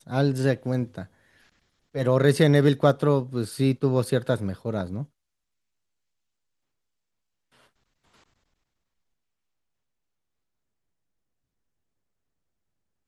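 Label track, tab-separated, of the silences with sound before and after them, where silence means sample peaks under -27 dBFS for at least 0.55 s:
1.010000	1.950000	silence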